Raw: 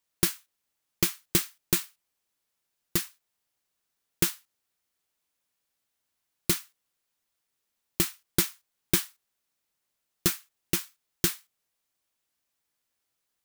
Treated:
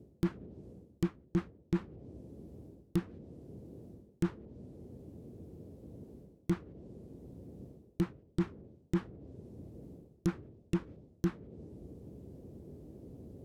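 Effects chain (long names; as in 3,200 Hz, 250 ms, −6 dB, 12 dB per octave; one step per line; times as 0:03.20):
leveller curve on the samples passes 1
treble cut that deepens with the level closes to 670 Hz, closed at −24.5 dBFS
noise in a band 55–470 Hz −60 dBFS
reversed playback
downward compressor 16 to 1, threshold −38 dBFS, peak gain reduction 20 dB
reversed playback
low-shelf EQ 320 Hz +9.5 dB
level +4 dB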